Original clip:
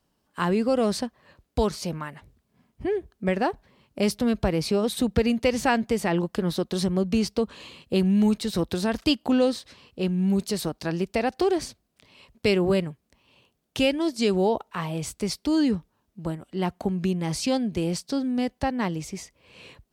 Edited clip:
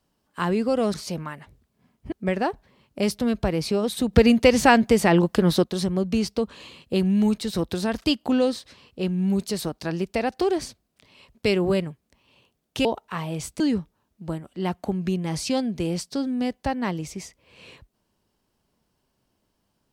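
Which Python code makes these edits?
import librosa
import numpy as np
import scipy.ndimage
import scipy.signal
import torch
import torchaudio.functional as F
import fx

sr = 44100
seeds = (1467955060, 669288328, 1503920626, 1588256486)

y = fx.edit(x, sr, fx.cut(start_s=0.94, length_s=0.75),
    fx.cut(start_s=2.87, length_s=0.25),
    fx.clip_gain(start_s=5.13, length_s=1.51, db=6.5),
    fx.cut(start_s=13.85, length_s=0.63),
    fx.cut(start_s=15.23, length_s=0.34), tone=tone)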